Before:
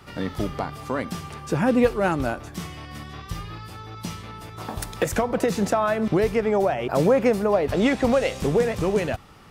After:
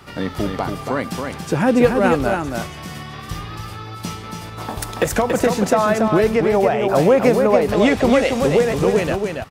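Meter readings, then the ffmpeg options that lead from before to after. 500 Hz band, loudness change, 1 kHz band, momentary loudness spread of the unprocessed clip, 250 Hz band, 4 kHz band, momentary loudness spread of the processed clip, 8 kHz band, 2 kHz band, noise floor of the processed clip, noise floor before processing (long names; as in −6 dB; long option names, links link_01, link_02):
+6.0 dB, +5.5 dB, +6.0 dB, 16 LU, +5.5 dB, +6.0 dB, 16 LU, +6.0 dB, +6.0 dB, −34 dBFS, −41 dBFS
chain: -af "lowshelf=frequency=140:gain=-3.5,aecho=1:1:281:0.562,volume=5dB"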